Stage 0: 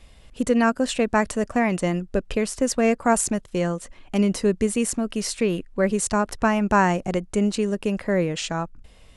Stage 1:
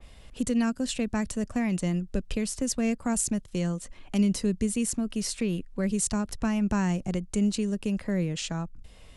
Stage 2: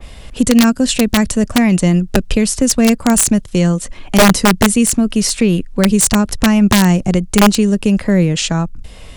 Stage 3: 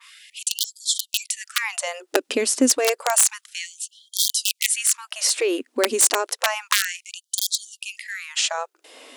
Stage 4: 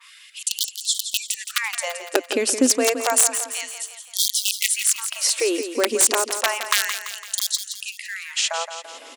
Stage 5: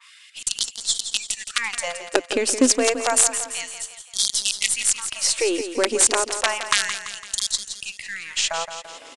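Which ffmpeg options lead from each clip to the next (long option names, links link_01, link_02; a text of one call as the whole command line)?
ffmpeg -i in.wav -filter_complex "[0:a]acrossover=split=240|3000[link_01][link_02][link_03];[link_02]acompressor=threshold=-45dB:ratio=2[link_04];[link_01][link_04][link_03]amix=inputs=3:normalize=0,adynamicequalizer=threshold=0.00447:dfrequency=2600:dqfactor=0.7:tfrequency=2600:tqfactor=0.7:attack=5:release=100:ratio=0.375:range=2:mode=cutabove:tftype=highshelf" out.wav
ffmpeg -i in.wav -af "acontrast=83,aeval=exprs='(mod(3.76*val(0)+1,2)-1)/3.76':channel_layout=same,volume=8.5dB" out.wav
ffmpeg -i in.wav -af "afftfilt=real='re*gte(b*sr/1024,230*pow(3200/230,0.5+0.5*sin(2*PI*0.3*pts/sr)))':imag='im*gte(b*sr/1024,230*pow(3200/230,0.5+0.5*sin(2*PI*0.3*pts/sr)))':win_size=1024:overlap=0.75,volume=-3dB" out.wav
ffmpeg -i in.wav -af "aecho=1:1:169|338|507|676|845|1014:0.335|0.174|0.0906|0.0471|0.0245|0.0127" out.wav
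ffmpeg -i in.wav -filter_complex "[0:a]asplit=2[link_01][link_02];[link_02]acrusher=bits=3:dc=4:mix=0:aa=0.000001,volume=-10.5dB[link_03];[link_01][link_03]amix=inputs=2:normalize=0,aresample=22050,aresample=44100,volume=-1.5dB" out.wav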